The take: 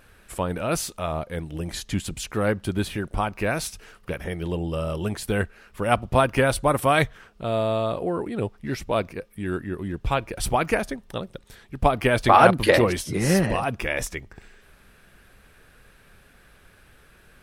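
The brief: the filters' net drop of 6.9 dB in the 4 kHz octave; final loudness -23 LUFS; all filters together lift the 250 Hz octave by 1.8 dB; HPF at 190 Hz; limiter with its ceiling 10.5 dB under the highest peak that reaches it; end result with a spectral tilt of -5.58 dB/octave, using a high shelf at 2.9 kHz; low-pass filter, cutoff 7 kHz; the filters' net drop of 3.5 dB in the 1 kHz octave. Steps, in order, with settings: high-pass 190 Hz; low-pass 7 kHz; peaking EQ 250 Hz +5 dB; peaking EQ 1 kHz -4.5 dB; treble shelf 2.9 kHz -4.5 dB; peaking EQ 4 kHz -5 dB; trim +5.5 dB; peak limiter -8.5 dBFS

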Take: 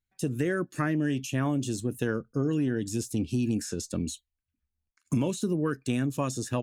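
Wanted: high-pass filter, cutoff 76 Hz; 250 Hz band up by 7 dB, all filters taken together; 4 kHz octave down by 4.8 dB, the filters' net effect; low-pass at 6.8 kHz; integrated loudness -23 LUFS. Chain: high-pass 76 Hz; low-pass 6.8 kHz; peaking EQ 250 Hz +8.5 dB; peaking EQ 4 kHz -6 dB; trim +1.5 dB

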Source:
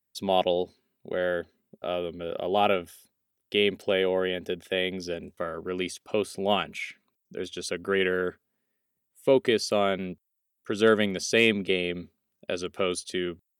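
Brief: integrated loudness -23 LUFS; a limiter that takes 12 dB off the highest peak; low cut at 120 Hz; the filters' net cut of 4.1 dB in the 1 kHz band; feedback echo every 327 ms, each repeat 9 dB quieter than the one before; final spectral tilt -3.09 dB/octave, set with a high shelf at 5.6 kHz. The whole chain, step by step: high-pass 120 Hz; peaking EQ 1 kHz -7 dB; treble shelf 5.6 kHz +9 dB; peak limiter -18 dBFS; feedback delay 327 ms, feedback 35%, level -9 dB; trim +8.5 dB

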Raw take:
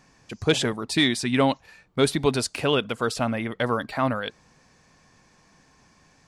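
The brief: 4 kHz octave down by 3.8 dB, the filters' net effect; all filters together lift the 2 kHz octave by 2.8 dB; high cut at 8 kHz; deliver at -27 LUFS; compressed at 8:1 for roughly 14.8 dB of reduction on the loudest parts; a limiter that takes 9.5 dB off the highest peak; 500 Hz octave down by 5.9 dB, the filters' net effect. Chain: low-pass 8 kHz; peaking EQ 500 Hz -7.5 dB; peaking EQ 2 kHz +5.5 dB; peaking EQ 4 kHz -6.5 dB; compression 8:1, threshold -33 dBFS; trim +13 dB; peak limiter -15.5 dBFS

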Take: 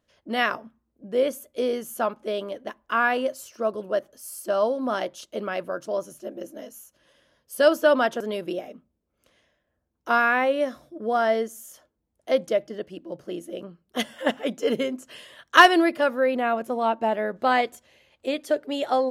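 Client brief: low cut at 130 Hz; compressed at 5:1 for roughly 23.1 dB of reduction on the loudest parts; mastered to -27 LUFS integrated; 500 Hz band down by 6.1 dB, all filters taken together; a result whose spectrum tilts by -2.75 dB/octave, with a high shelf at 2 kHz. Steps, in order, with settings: high-pass 130 Hz; peaking EQ 500 Hz -8.5 dB; treble shelf 2 kHz +7 dB; compression 5:1, threshold -33 dBFS; trim +10 dB

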